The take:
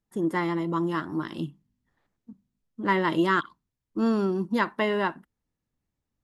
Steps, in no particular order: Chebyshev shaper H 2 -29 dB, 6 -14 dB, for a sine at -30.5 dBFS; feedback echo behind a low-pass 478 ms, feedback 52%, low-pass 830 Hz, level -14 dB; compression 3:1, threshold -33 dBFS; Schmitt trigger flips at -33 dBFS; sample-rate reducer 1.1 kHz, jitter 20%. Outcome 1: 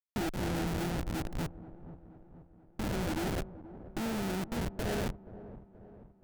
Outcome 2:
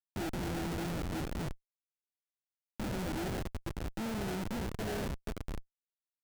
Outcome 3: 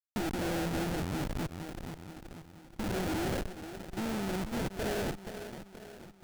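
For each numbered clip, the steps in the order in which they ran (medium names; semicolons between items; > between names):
sample-rate reducer > Schmitt trigger > compression > Chebyshev shaper > feedback echo behind a low-pass; sample-rate reducer > feedback echo behind a low-pass > Chebyshev shaper > Schmitt trigger > compression; Schmitt trigger > feedback echo behind a low-pass > compression > Chebyshev shaper > sample-rate reducer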